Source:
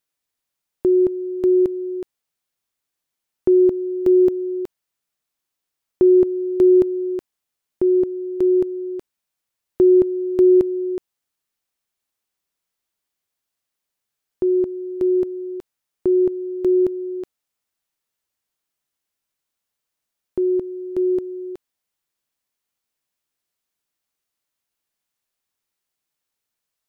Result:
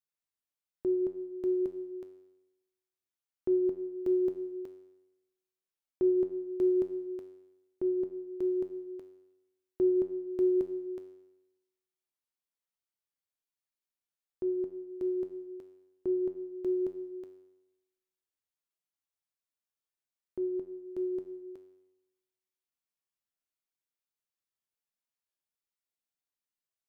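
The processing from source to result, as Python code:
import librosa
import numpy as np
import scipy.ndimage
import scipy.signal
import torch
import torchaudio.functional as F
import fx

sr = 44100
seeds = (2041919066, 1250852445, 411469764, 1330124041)

y = fx.comb_fb(x, sr, f0_hz=93.0, decay_s=0.97, harmonics='all', damping=0.0, mix_pct=80)
y = y * librosa.db_to_amplitude(-3.5)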